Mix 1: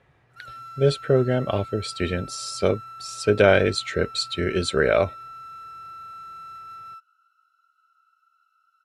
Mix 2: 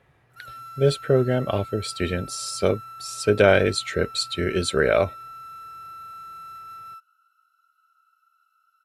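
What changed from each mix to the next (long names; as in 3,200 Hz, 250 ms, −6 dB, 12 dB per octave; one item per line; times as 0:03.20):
master: remove low-pass filter 8,000 Hz 12 dB per octave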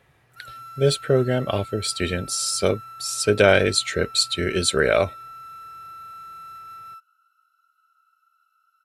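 speech: add high-shelf EQ 3,100 Hz +8.5 dB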